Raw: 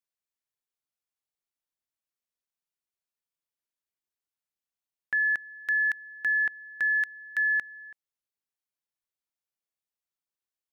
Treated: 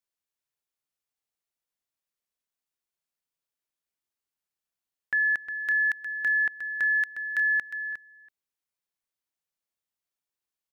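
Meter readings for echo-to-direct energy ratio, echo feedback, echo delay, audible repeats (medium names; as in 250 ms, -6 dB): -9.5 dB, no regular repeats, 358 ms, 1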